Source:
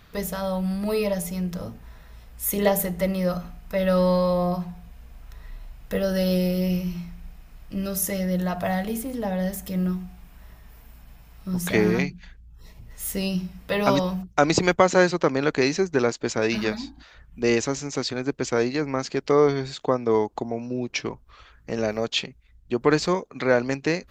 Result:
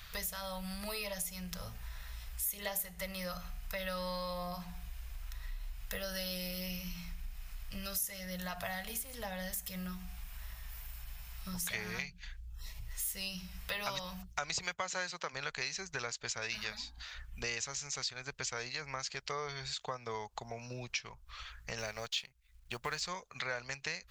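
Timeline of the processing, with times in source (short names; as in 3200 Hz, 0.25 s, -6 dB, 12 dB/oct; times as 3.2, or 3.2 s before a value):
14.64–15.32 HPF 84 Hz -> 200 Hz
21.78–23.01 G.711 law mismatch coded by A
whole clip: passive tone stack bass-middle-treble 10-0-10; compressor 3:1, threshold -48 dBFS; gain +8 dB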